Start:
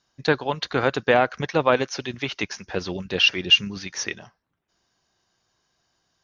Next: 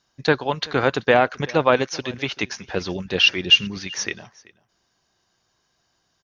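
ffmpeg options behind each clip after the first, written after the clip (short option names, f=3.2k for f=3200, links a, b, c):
-af "aecho=1:1:383:0.0708,volume=2dB"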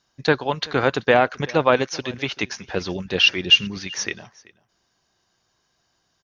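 -af anull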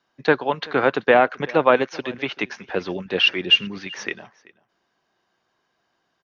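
-filter_complex "[0:a]acrossover=split=180 3300:gain=0.2 1 0.158[a][b][c];[a][b][c]amix=inputs=3:normalize=0,volume=1.5dB"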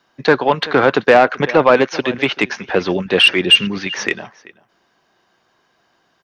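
-filter_complex "[0:a]asplit=2[a][b];[b]alimiter=limit=-12.5dB:level=0:latency=1:release=27,volume=0dB[c];[a][c]amix=inputs=2:normalize=0,asoftclip=type=tanh:threshold=-5dB,volume=4dB"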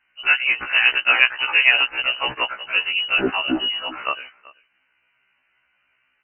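-af "lowpass=f=2.6k:t=q:w=0.5098,lowpass=f=2.6k:t=q:w=0.6013,lowpass=f=2.6k:t=q:w=0.9,lowpass=f=2.6k:t=q:w=2.563,afreqshift=-3100,afftfilt=real='re*1.73*eq(mod(b,3),0)':imag='im*1.73*eq(mod(b,3),0)':win_size=2048:overlap=0.75,volume=-2dB"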